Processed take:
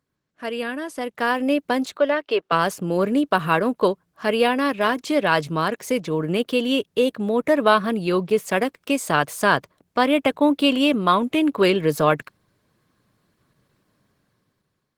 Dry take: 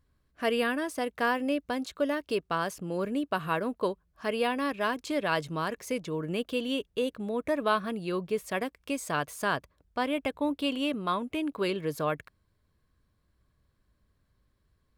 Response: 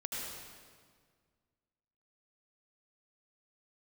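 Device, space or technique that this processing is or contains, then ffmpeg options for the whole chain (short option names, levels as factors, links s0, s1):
video call: -filter_complex "[0:a]asettb=1/sr,asplit=3[s0][s1][s2];[s0]atrim=end=1.974[s3];[s1]atrim=start=1.97:end=2.52,asetpts=PTS-STARTPTS,afade=t=in:d=0.004:c=qsin,afade=t=out:st=0.546:d=0.004:c=qsin,acrossover=split=340 4200:gain=0.0891 1 0.112[s4][s5][s6];[s4][s5][s6]amix=inputs=3:normalize=0[s7];[s2]atrim=start=2.516[s8];[s3][s7]acrossfade=d=0.004:c1=hsin:c2=qsin[s9];[s9][s8]acrossfade=d=0.004:c1=qsin:c2=hsin,highpass=f=120:w=0.5412,highpass=f=120:w=1.3066,dynaudnorm=f=540:g=5:m=6.68,volume=0.891" -ar 48000 -c:a libopus -b:a 16k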